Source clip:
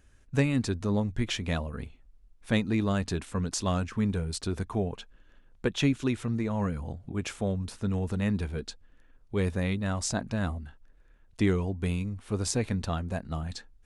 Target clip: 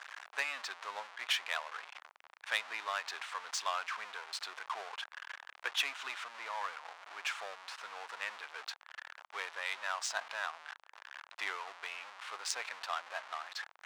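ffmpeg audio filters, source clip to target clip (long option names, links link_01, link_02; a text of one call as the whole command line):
ffmpeg -i in.wav -af "aeval=exprs='val(0)+0.5*0.0266*sgn(val(0))':channel_layout=same,adynamicsmooth=sensitivity=3:basefreq=2300,highpass=frequency=900:width=0.5412,highpass=frequency=900:width=1.3066" out.wav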